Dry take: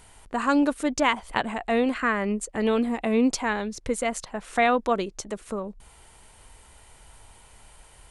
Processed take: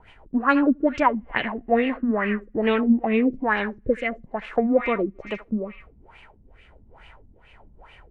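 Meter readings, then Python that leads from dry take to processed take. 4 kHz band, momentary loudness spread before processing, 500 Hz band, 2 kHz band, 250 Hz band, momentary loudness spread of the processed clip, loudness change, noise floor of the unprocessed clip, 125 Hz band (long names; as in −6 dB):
−3.5 dB, 11 LU, +2.5 dB, +2.0 dB, +3.5 dB, 10 LU, +2.5 dB, −53 dBFS, +2.5 dB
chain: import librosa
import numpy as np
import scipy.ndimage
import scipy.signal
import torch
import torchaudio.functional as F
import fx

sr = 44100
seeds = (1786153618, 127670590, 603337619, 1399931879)

y = fx.rotary_switch(x, sr, hz=7.5, then_hz=1.2, switch_at_s=1.15)
y = fx.echo_banded(y, sr, ms=78, feedback_pct=84, hz=2500.0, wet_db=-10)
y = fx.filter_lfo_lowpass(y, sr, shape='sine', hz=2.3, low_hz=210.0, high_hz=2700.0, q=3.8)
y = y * 10.0 ** (2.0 / 20.0)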